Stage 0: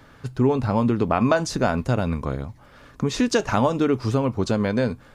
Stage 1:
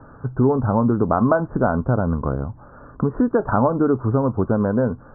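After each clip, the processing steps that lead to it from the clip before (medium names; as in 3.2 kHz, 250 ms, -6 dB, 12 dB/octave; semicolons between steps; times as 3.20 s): steep low-pass 1.5 kHz 72 dB/octave; in parallel at +1 dB: compression, threshold -28 dBFS, peak gain reduction 13.5 dB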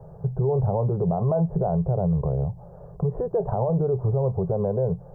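FFT filter 110 Hz 0 dB, 170 Hz +10 dB, 260 Hz -30 dB, 390 Hz +2 dB, 760 Hz +2 dB, 1.4 kHz -25 dB, 3.1 kHz +4 dB, 4.7 kHz +11 dB; peak limiter -15.5 dBFS, peak gain reduction 11 dB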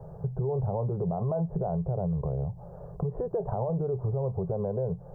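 compression 2:1, threshold -31 dBFS, peak gain reduction 7 dB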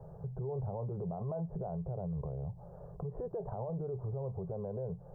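peak limiter -25 dBFS, peak gain reduction 5.5 dB; trim -6 dB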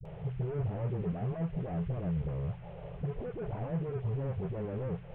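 one-bit delta coder 16 kbps, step -56.5 dBFS; phase dispersion highs, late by 54 ms, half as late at 380 Hz; trim +5 dB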